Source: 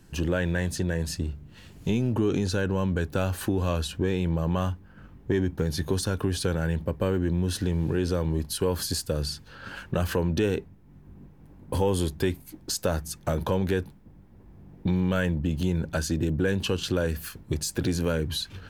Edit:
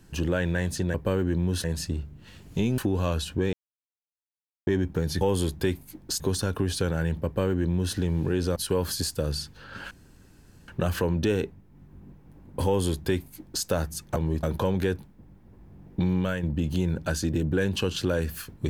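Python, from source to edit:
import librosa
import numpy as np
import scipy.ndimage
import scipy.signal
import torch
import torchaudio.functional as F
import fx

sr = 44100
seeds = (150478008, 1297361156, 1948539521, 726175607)

y = fx.edit(x, sr, fx.cut(start_s=2.08, length_s=1.33),
    fx.silence(start_s=4.16, length_s=1.14),
    fx.duplicate(start_s=6.89, length_s=0.7, to_s=0.94),
    fx.move(start_s=8.2, length_s=0.27, to_s=13.3),
    fx.insert_room_tone(at_s=9.82, length_s=0.77),
    fx.duplicate(start_s=11.8, length_s=0.99, to_s=5.84),
    fx.fade_out_to(start_s=15.04, length_s=0.26, floor_db=-7.0), tone=tone)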